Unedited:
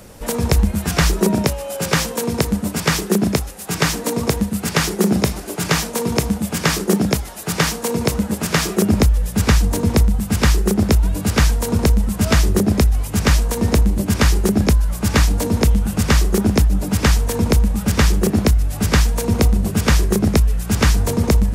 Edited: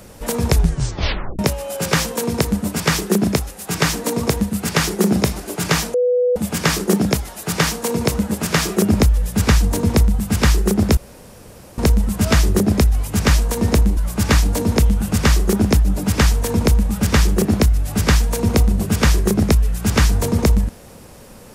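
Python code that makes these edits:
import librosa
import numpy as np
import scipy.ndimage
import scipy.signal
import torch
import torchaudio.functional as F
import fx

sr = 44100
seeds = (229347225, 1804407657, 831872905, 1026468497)

y = fx.edit(x, sr, fx.tape_stop(start_s=0.51, length_s=0.88),
    fx.bleep(start_s=5.94, length_s=0.42, hz=494.0, db=-13.0),
    fx.room_tone_fill(start_s=10.97, length_s=0.81),
    fx.cut(start_s=13.97, length_s=0.85), tone=tone)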